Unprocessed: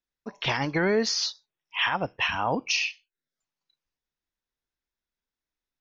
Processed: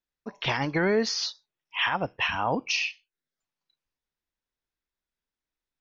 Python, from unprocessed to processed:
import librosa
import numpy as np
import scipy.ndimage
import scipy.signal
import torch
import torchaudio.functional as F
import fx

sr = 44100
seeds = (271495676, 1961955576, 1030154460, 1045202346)

y = fx.air_absorb(x, sr, metres=53.0)